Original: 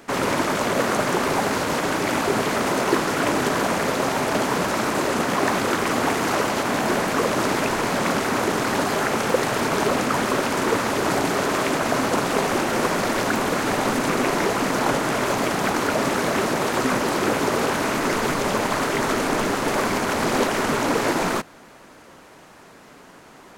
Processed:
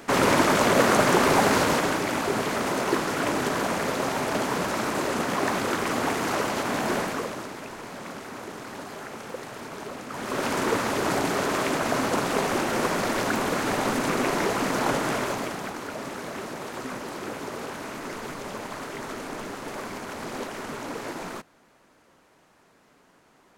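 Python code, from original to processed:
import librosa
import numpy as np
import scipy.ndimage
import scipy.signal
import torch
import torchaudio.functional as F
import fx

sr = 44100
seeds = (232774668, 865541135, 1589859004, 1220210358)

y = fx.gain(x, sr, db=fx.line((1.63, 2.0), (2.08, -4.5), (7.0, -4.5), (7.51, -16.0), (10.06, -16.0), (10.46, -3.5), (15.12, -3.5), (15.76, -13.0)))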